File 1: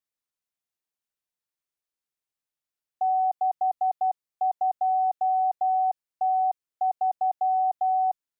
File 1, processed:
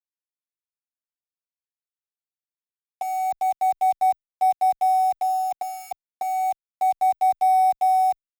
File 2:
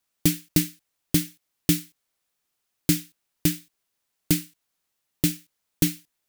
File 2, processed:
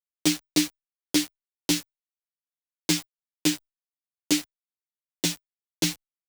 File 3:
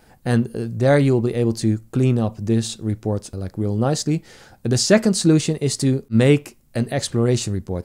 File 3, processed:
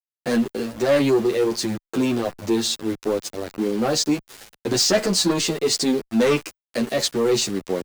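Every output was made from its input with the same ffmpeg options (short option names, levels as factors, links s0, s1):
-filter_complex "[0:a]acrossover=split=220 7000:gain=0.0794 1 0.126[s0][s1][s2];[s0][s1][s2]amix=inputs=3:normalize=0,acrossover=split=3200[s3][s4];[s4]acontrast=44[s5];[s3][s5]amix=inputs=2:normalize=0,asoftclip=type=tanh:threshold=0.126,asplit=2[s6][s7];[s7]acompressor=threshold=0.0126:ratio=10,volume=0.794[s8];[s6][s8]amix=inputs=2:normalize=0,aeval=exprs='val(0)*gte(abs(val(0)),0.02)':c=same,asplit=2[s9][s10];[s10]adelay=9.7,afreqshift=-0.32[s11];[s9][s11]amix=inputs=2:normalize=1,volume=2"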